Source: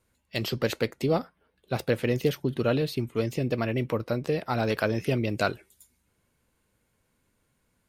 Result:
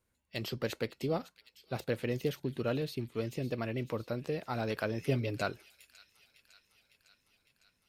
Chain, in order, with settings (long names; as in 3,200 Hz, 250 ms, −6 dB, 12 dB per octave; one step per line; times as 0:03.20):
0:05.02–0:05.42: comb filter 7.2 ms, depth 79%
delay with a high-pass on its return 555 ms, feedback 67%, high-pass 3,100 Hz, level −13 dB
level −8 dB